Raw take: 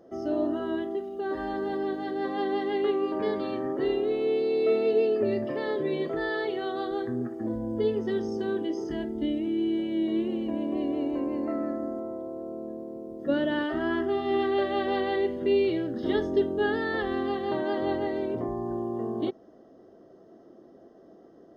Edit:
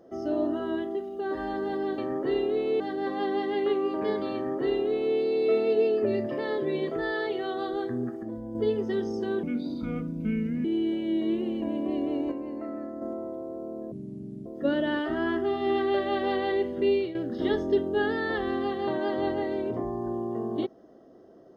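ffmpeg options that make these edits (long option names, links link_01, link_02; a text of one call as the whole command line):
ffmpeg -i in.wav -filter_complex "[0:a]asplit=12[link_01][link_02][link_03][link_04][link_05][link_06][link_07][link_08][link_09][link_10][link_11][link_12];[link_01]atrim=end=1.982[link_13];[link_02]atrim=start=3.518:end=4.342[link_14];[link_03]atrim=start=1.978:end=7.412[link_15];[link_04]atrim=start=7.408:end=7.732,asetpts=PTS-STARTPTS,volume=-5.5dB[link_16];[link_05]atrim=start=7.728:end=8.614[link_17];[link_06]atrim=start=8.61:end=9.51,asetpts=PTS-STARTPTS,asetrate=32634,aresample=44100,atrim=end_sample=53635,asetpts=PTS-STARTPTS[link_18];[link_07]atrim=start=9.506:end=11.182[link_19];[link_08]atrim=start=11.178:end=11.882,asetpts=PTS-STARTPTS,volume=-5.5dB[link_20];[link_09]atrim=start=11.878:end=12.784[link_21];[link_10]atrim=start=12.78:end=13.1,asetpts=PTS-STARTPTS,asetrate=26019,aresample=44100[link_22];[link_11]atrim=start=13.096:end=15.79,asetpts=PTS-STARTPTS,afade=type=out:start_time=2.374:duration=0.32:curve=qsin:silence=0.223872[link_23];[link_12]atrim=start=15.79,asetpts=PTS-STARTPTS,afade=type=in:duration=0.004:curve=hsin:silence=0.223872[link_24];[link_13][link_14]acrossfade=duration=0.004:curve1=hsin:curve2=hsin[link_25];[link_25][link_15]acrossfade=duration=0.004:curve1=hsin:curve2=hsin[link_26];[link_26][link_16]acrossfade=duration=0.004:curve1=hsin:curve2=hsin[link_27];[link_27][link_17]acrossfade=duration=0.004:curve1=hsin:curve2=hsin[link_28];[link_28][link_18]acrossfade=duration=0.004:curve1=hsin:curve2=hsin[link_29];[link_29][link_19]acrossfade=duration=0.004:curve1=hsin:curve2=hsin[link_30];[link_30][link_20]acrossfade=duration=0.004:curve1=hsin:curve2=hsin[link_31];[link_31][link_21]acrossfade=duration=0.004:curve1=hsin:curve2=hsin[link_32];[link_32][link_22]acrossfade=duration=0.004:curve1=hsin:curve2=hsin[link_33];[link_23][link_24]concat=n=2:v=0:a=1[link_34];[link_33][link_34]acrossfade=duration=0.004:curve1=hsin:curve2=hsin" out.wav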